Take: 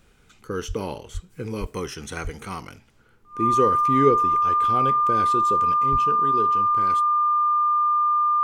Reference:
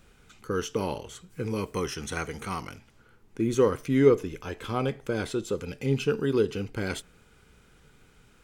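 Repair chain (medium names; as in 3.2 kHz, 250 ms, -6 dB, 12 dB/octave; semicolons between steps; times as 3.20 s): band-stop 1.2 kHz, Q 30; de-plosive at 0.67/1.13/1.60/2.23/5.91 s; trim 0 dB, from 5.78 s +6 dB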